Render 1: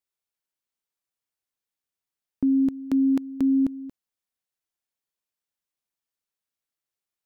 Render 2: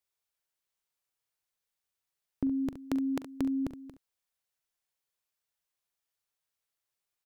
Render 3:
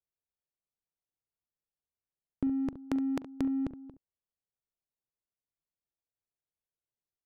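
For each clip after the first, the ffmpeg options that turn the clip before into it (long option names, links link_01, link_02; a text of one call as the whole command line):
ffmpeg -i in.wav -filter_complex "[0:a]equalizer=frequency=250:width=2.1:gain=-10.5,asplit=2[link_01][link_02];[link_02]aecho=0:1:42|69:0.158|0.251[link_03];[link_01][link_03]amix=inputs=2:normalize=0,volume=1.5dB" out.wav
ffmpeg -i in.wav -af "adynamicsmooth=sensitivity=5.5:basefreq=600" out.wav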